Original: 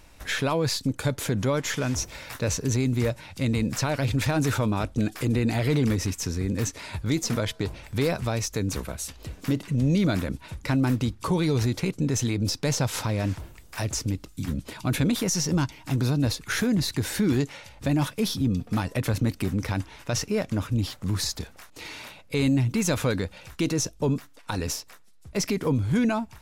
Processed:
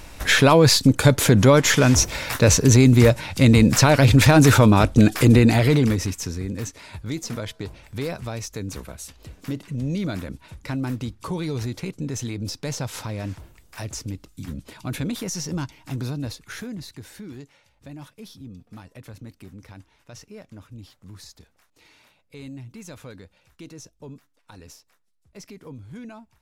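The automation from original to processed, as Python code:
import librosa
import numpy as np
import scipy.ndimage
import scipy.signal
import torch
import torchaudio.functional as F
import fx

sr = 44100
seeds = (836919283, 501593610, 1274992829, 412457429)

y = fx.gain(x, sr, db=fx.line((5.32, 11.0), (5.98, 2.5), (6.72, -4.0), (16.01, -4.0), (17.32, -16.0)))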